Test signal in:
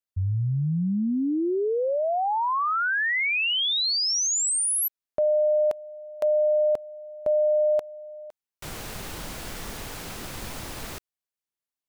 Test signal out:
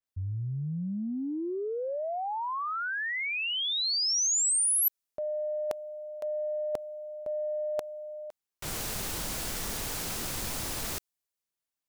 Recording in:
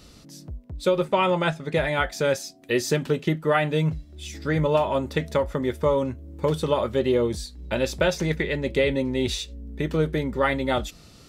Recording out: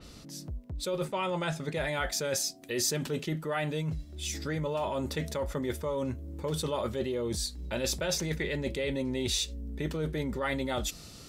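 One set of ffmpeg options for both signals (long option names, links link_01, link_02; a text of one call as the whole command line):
ffmpeg -i in.wav -af "areverse,acompressor=threshold=-36dB:ratio=5:attack=44:release=35:knee=6:detection=peak,areverse,adynamicequalizer=threshold=0.00355:dfrequency=4100:dqfactor=0.7:tfrequency=4100:tqfactor=0.7:attack=5:release=100:ratio=0.375:range=3.5:mode=boostabove:tftype=highshelf" out.wav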